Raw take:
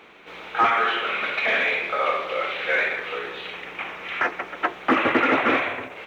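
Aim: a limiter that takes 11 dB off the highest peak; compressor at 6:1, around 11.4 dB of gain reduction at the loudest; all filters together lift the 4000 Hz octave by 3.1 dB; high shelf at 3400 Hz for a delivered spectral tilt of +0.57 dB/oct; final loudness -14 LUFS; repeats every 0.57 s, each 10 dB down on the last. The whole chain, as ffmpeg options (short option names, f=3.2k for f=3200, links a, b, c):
-af "highshelf=f=3.4k:g=-6,equalizer=f=4k:t=o:g=8.5,acompressor=threshold=-28dB:ratio=6,alimiter=level_in=3.5dB:limit=-24dB:level=0:latency=1,volume=-3.5dB,aecho=1:1:570|1140|1710|2280:0.316|0.101|0.0324|0.0104,volume=20.5dB"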